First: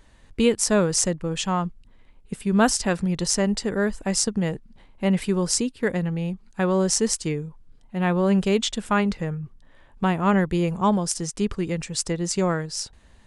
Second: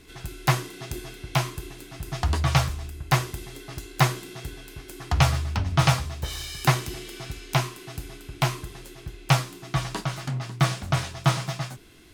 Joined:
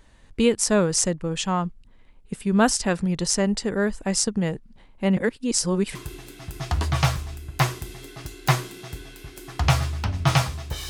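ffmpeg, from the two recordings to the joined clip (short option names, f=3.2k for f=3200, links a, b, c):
-filter_complex "[0:a]apad=whole_dur=10.89,atrim=end=10.89,asplit=2[a][b];[a]atrim=end=5.172[c];[b]atrim=start=5.168:end=5.952,asetpts=PTS-STARTPTS,areverse[d];[1:a]atrim=start=1.468:end=6.41[e];[c][d]acrossfade=d=0.004:c1=hsin:c2=hsin[f];[f][e]acrossfade=d=0.004:c1=hsin:c2=hsin"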